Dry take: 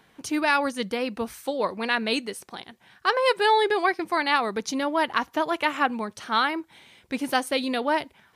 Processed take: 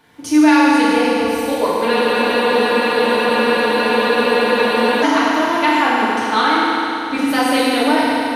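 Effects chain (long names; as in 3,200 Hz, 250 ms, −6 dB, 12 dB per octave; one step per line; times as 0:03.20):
feedback delay network reverb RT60 3.1 s, high-frequency decay 0.95×, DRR −9 dB
in parallel at −1 dB: brickwall limiter −6.5 dBFS, peak gain reduction 7 dB
on the sum: frozen spectrum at 0:01.91, 3.12 s
level −4.5 dB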